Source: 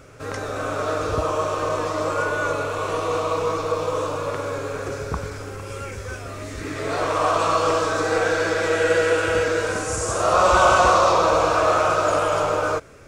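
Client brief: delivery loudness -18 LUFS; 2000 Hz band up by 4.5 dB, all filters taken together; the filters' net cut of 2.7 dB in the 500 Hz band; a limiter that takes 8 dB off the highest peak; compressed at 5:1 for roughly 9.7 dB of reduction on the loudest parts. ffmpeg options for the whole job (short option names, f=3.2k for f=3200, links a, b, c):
-af "equalizer=f=500:t=o:g=-3.5,equalizer=f=2k:t=o:g=7,acompressor=threshold=-22dB:ratio=5,volume=10.5dB,alimiter=limit=-9dB:level=0:latency=1"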